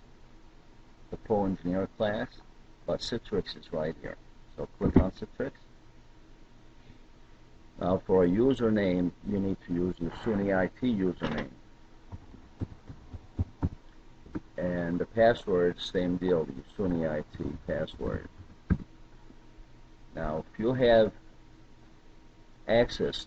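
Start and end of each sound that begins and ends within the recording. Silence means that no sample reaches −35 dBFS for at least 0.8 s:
0:01.13–0:05.49
0:07.79–0:18.82
0:20.16–0:21.09

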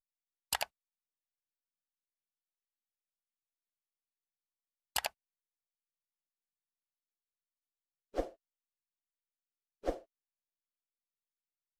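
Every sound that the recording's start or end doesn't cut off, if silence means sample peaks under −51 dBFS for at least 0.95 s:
0:04.96–0:05.08
0:08.14–0:08.32
0:09.84–0:10.02

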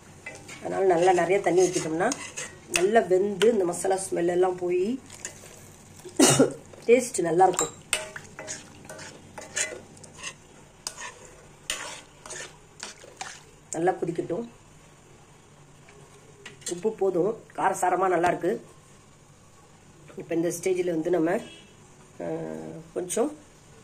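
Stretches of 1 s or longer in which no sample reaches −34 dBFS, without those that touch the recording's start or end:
0:14.45–0:16.46
0:18.57–0:20.11

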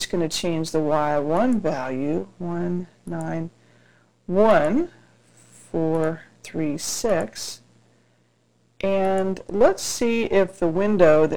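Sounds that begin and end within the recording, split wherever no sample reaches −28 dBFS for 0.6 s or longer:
0:04.29–0:04.86
0:05.74–0:07.54

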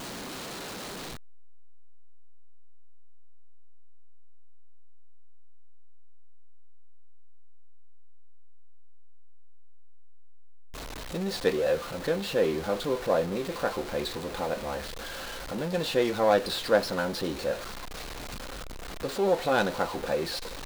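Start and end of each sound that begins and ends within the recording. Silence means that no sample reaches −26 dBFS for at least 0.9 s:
0:11.15–0:17.53

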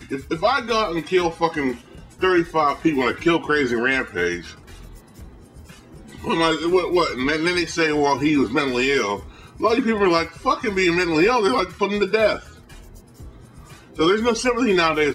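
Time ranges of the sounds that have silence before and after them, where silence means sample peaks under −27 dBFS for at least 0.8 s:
0:06.15–0:12.38

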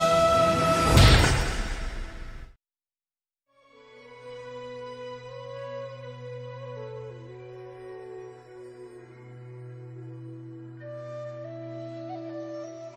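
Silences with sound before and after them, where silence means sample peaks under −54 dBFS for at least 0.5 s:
0:02.55–0:03.57

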